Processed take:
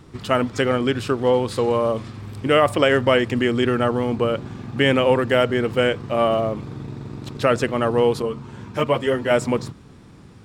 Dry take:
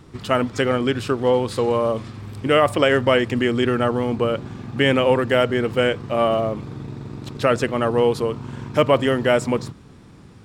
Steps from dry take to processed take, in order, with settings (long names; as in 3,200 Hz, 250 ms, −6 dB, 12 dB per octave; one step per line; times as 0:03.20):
0:08.22–0:09.31: string-ensemble chorus